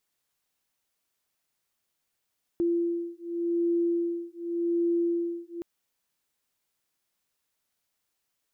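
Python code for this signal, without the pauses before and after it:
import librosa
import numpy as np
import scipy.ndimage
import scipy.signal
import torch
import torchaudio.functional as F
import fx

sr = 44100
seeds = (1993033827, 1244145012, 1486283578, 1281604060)

y = fx.two_tone_beats(sr, length_s=3.02, hz=341.0, beat_hz=0.87, level_db=-28.0)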